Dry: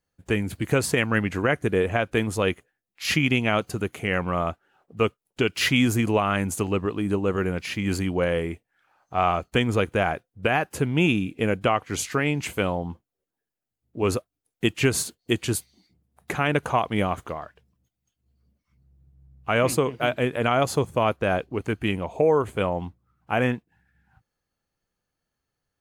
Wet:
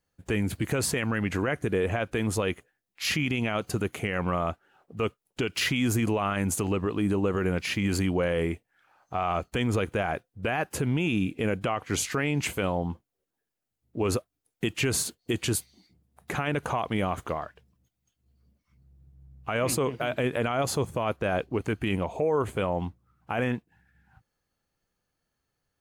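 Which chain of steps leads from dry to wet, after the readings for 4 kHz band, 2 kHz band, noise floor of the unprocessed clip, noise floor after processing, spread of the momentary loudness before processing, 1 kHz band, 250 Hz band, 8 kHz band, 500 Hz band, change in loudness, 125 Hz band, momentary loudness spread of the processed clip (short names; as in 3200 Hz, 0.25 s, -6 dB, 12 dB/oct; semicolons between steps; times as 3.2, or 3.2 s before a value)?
-3.5 dB, -5.0 dB, -85 dBFS, -83 dBFS, 8 LU, -5.0 dB, -3.0 dB, 0.0 dB, -4.5 dB, -4.0 dB, -2.5 dB, 7 LU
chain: limiter -19 dBFS, peak gain reduction 10 dB; gain +1.5 dB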